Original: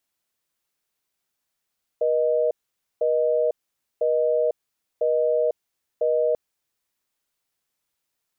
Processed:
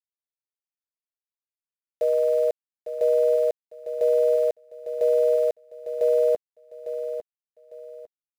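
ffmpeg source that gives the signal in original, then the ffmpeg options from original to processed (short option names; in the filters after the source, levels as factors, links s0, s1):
-f lavfi -i "aevalsrc='0.0891*(sin(2*PI*480*t)+sin(2*PI*620*t))*clip(min(mod(t,1),0.5-mod(t,1))/0.005,0,1)':d=4.34:s=44100"
-af "aeval=exprs='val(0)*gte(abs(val(0)),0.0126)':c=same,aecho=1:1:852|1704|2556:0.316|0.0885|0.0248"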